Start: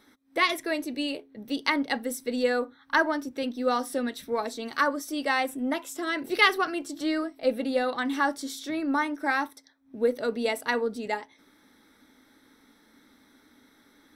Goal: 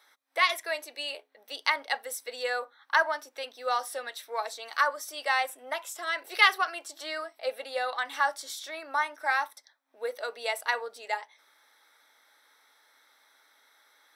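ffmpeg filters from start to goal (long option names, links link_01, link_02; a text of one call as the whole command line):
ffmpeg -i in.wav -af "highpass=frequency=610:width=0.5412,highpass=frequency=610:width=1.3066" out.wav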